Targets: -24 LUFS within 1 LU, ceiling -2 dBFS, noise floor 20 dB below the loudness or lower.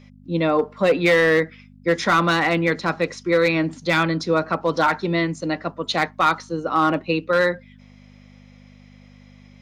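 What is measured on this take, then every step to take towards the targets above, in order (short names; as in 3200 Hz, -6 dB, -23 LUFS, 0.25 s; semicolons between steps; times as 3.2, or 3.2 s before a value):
clipped 0.5%; flat tops at -10.5 dBFS; hum 50 Hz; harmonics up to 250 Hz; hum level -45 dBFS; loudness -20.5 LUFS; peak -10.5 dBFS; loudness target -24.0 LUFS
-> clip repair -10.5 dBFS; de-hum 50 Hz, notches 5; gain -3.5 dB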